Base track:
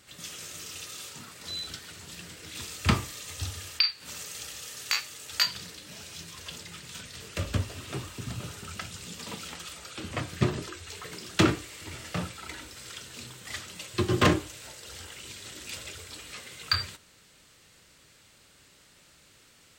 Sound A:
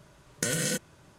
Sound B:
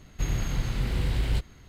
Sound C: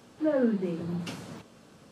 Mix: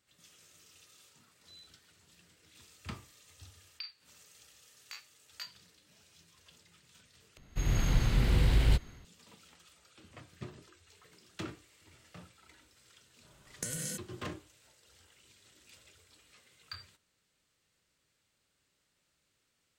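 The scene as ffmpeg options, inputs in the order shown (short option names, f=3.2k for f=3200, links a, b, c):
-filter_complex "[0:a]volume=-19.5dB[a];[2:a]dynaudnorm=f=120:g=5:m=8.5dB[b];[1:a]acrossover=split=160|5500[c][d][e];[d]acompressor=threshold=-42dB:ratio=6:attack=18:release=54:knee=2.83:detection=peak[f];[c][f][e]amix=inputs=3:normalize=0[g];[a]asplit=2[h][i];[h]atrim=end=7.374[j];[b]atrim=end=1.68,asetpts=PTS-STARTPTS,volume=-7.5dB[k];[i]atrim=start=9.046[l];[g]atrim=end=1.18,asetpts=PTS-STARTPTS,volume=-6dB,afade=t=in:d=0.05,afade=t=out:st=1.13:d=0.05,adelay=13200[m];[j][k]acrossfade=d=0.004:c1=hsin:c2=hsin[n];[n][l]acrossfade=d=0.004:c1=hsin:c2=hsin[o];[o][m]amix=inputs=2:normalize=0"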